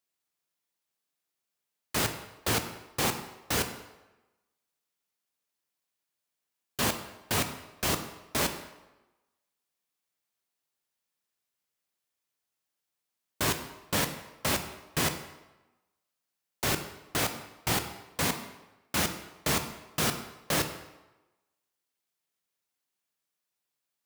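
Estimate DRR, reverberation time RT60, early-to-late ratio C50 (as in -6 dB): 7.0 dB, 1.1 s, 9.5 dB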